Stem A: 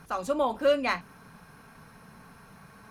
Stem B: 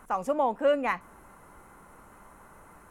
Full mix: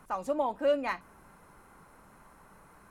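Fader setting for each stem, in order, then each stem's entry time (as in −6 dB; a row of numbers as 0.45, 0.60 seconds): −12.0, −5.0 decibels; 0.00, 0.00 seconds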